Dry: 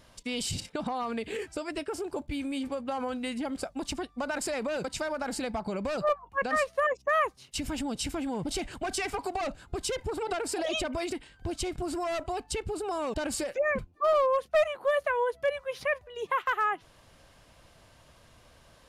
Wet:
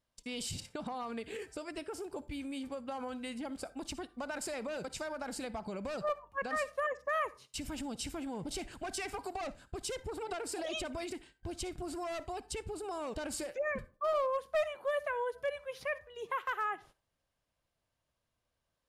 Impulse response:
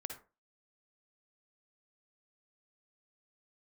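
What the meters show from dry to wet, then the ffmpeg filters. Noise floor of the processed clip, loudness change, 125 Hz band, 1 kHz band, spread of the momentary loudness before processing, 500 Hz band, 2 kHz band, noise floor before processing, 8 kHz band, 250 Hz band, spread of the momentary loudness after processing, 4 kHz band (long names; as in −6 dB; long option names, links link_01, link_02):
−85 dBFS, −7.0 dB, −7.5 dB, −7.5 dB, 8 LU, −7.5 dB, −7.0 dB, −59 dBFS, −6.0 dB, −7.5 dB, 8 LU, −7.0 dB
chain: -filter_complex "[0:a]agate=range=-20dB:threshold=-49dB:ratio=16:detection=peak,asplit=2[link_01][link_02];[1:a]atrim=start_sample=2205,highshelf=frequency=5300:gain=10.5[link_03];[link_02][link_03]afir=irnorm=-1:irlink=0,volume=-10dB[link_04];[link_01][link_04]amix=inputs=2:normalize=0,volume=-9dB"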